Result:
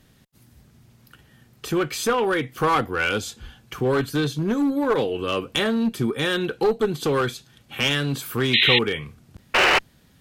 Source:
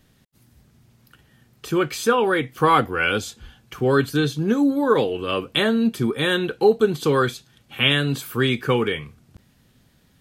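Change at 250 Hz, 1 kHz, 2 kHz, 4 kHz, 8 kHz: -2.5 dB, -2.0 dB, +1.0 dB, +2.5 dB, +2.0 dB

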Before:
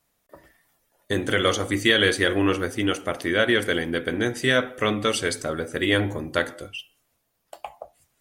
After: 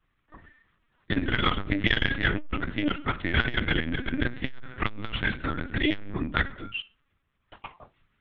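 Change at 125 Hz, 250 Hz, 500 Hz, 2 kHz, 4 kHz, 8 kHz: -0.5 dB, -4.0 dB, -13.0 dB, -3.5 dB, -6.0 dB, under -35 dB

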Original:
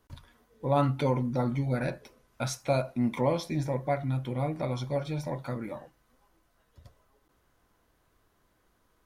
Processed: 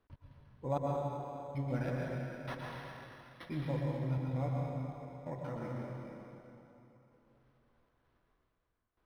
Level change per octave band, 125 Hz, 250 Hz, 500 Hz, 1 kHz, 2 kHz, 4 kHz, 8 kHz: -6.5 dB, -9.0 dB, -9.5 dB, -8.5 dB, -7.0 dB, -12.5 dB, under -20 dB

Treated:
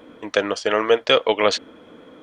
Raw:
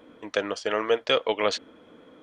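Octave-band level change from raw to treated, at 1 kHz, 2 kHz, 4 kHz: +6.5 dB, +6.5 dB, +6.5 dB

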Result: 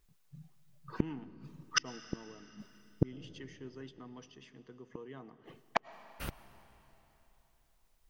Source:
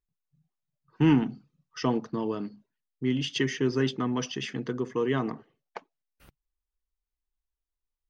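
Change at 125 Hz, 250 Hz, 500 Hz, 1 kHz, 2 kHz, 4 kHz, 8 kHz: -11.0 dB, -15.0 dB, -14.5 dB, -6.0 dB, -5.5 dB, -6.5 dB, no reading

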